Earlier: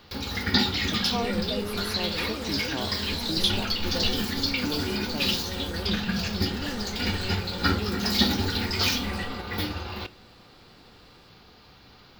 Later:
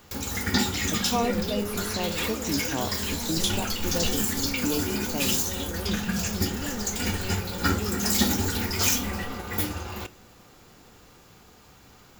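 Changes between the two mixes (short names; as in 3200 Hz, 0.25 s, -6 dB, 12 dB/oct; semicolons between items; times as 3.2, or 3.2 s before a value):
speech: send on; first sound: add resonant high shelf 5700 Hz +9.5 dB, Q 3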